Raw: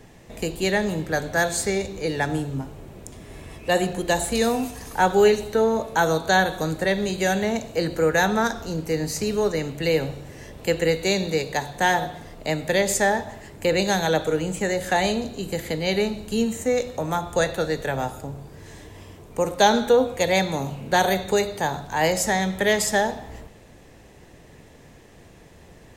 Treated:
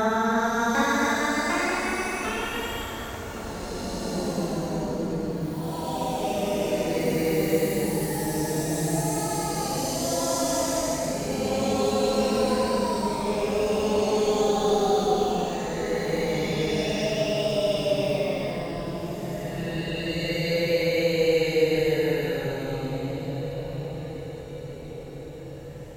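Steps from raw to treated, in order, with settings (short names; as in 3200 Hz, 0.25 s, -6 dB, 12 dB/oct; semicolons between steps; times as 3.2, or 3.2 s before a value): Paulstretch 14×, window 0.10 s, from 8.4; dark delay 1.116 s, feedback 71%, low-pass 1200 Hz, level -15 dB; echoes that change speed 0.749 s, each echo +4 st, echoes 3; gain -3.5 dB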